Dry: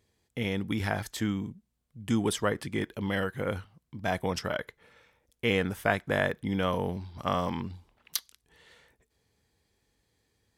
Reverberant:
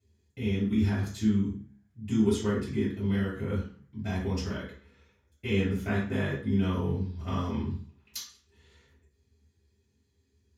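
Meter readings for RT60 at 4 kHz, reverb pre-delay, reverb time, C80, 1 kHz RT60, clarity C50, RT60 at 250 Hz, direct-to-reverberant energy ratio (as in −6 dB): 0.40 s, 3 ms, 0.45 s, 10.0 dB, 0.45 s, 5.0 dB, 0.50 s, −10.5 dB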